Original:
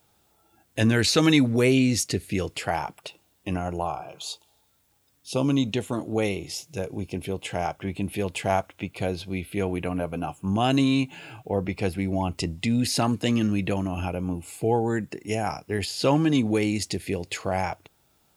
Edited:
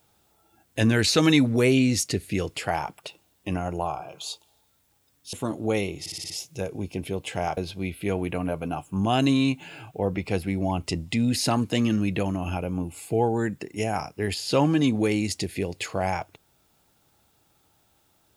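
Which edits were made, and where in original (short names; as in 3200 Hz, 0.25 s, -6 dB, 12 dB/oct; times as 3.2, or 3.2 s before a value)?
5.33–5.81 cut
6.48 stutter 0.06 s, 6 plays
7.75–9.08 cut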